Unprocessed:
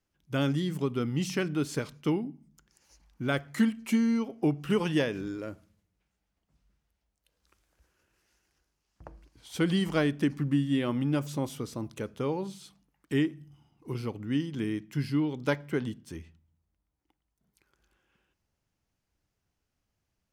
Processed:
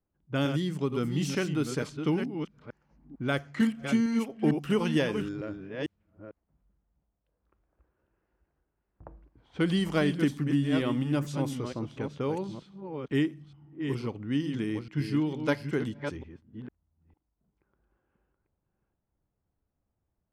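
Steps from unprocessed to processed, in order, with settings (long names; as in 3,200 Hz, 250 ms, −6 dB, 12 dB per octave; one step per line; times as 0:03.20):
delay that plays each chunk backwards 451 ms, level −7 dB
low-pass that shuts in the quiet parts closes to 1,000 Hz, open at −25.5 dBFS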